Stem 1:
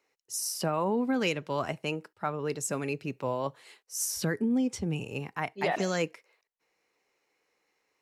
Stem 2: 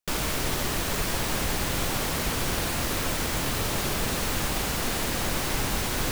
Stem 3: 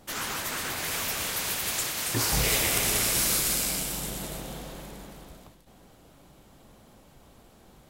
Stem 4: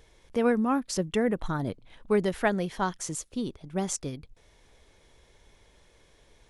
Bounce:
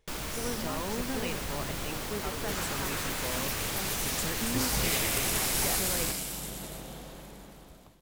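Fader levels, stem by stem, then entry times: -9.0 dB, -8.5 dB, -4.5 dB, -14.0 dB; 0.00 s, 0.00 s, 2.40 s, 0.00 s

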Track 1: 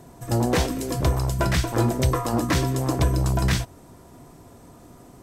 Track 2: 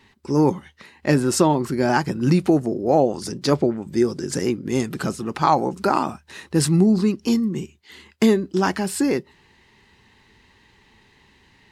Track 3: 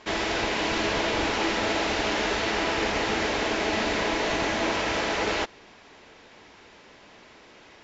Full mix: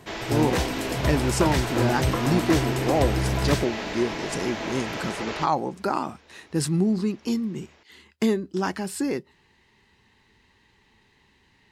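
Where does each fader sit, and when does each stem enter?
-3.5 dB, -6.0 dB, -6.0 dB; 0.00 s, 0.00 s, 0.00 s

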